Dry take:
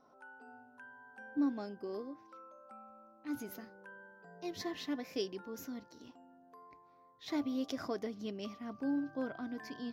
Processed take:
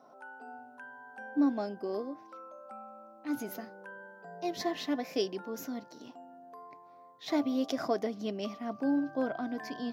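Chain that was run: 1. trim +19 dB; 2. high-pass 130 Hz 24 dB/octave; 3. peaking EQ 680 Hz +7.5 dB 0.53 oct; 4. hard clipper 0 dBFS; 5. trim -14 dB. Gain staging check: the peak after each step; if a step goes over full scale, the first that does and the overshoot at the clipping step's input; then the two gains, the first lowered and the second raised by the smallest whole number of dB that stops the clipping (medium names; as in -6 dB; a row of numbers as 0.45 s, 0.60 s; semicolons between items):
-5.0 dBFS, -4.0 dBFS, -3.0 dBFS, -3.0 dBFS, -17.0 dBFS; nothing clips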